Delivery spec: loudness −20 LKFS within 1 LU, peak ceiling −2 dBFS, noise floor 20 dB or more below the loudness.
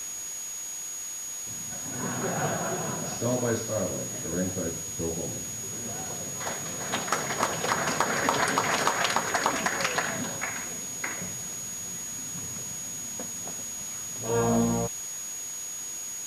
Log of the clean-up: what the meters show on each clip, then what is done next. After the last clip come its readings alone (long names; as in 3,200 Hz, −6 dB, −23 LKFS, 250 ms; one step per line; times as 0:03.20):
interfering tone 6,700 Hz; level of the tone −34 dBFS; background noise floor −36 dBFS; target noise floor −50 dBFS; integrated loudness −29.5 LKFS; sample peak −10.0 dBFS; target loudness −20.0 LKFS
→ notch filter 6,700 Hz, Q 30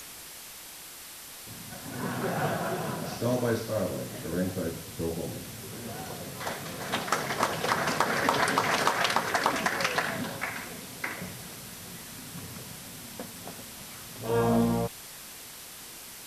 interfering tone none found; background noise floor −45 dBFS; target noise floor −51 dBFS
→ broadband denoise 6 dB, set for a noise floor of −45 dBFS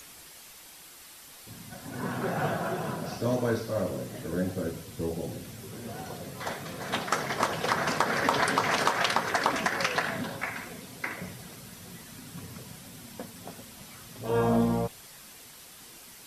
background noise floor −50 dBFS; integrated loudness −30.0 LKFS; sample peak −10.5 dBFS; target loudness −20.0 LKFS
→ level +10 dB
brickwall limiter −2 dBFS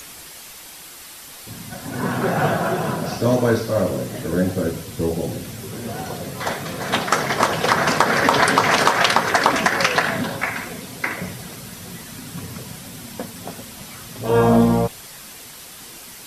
integrated loudness −20.0 LKFS; sample peak −2.0 dBFS; background noise floor −40 dBFS